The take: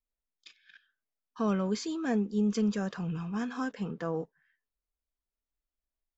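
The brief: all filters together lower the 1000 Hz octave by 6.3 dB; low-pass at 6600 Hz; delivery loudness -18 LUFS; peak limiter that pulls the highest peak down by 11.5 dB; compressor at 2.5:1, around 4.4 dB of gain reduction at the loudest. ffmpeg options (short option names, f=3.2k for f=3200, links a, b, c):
-af "lowpass=6.6k,equalizer=f=1k:t=o:g=-8.5,acompressor=threshold=-31dB:ratio=2.5,volume=25dB,alimiter=limit=-11dB:level=0:latency=1"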